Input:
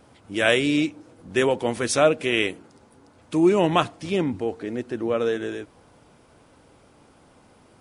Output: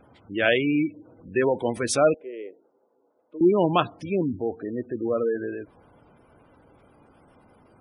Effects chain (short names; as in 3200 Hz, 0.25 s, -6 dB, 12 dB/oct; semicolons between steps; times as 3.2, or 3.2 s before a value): spectral gate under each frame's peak -20 dB strong; 2.14–3.41 ladder band-pass 550 Hz, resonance 40%; gain -1 dB